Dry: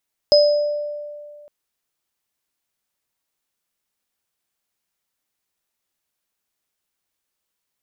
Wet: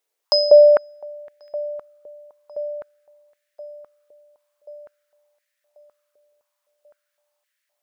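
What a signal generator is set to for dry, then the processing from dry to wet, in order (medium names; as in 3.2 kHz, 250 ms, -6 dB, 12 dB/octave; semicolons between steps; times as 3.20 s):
sine partials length 1.16 s, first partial 590 Hz, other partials 5.05 kHz, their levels -3.5 dB, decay 2.09 s, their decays 0.68 s, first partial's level -9 dB
feedback echo behind a low-pass 1088 ms, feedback 44%, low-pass 1.2 kHz, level -15.5 dB; step-sequenced high-pass 3.9 Hz 460–1800 Hz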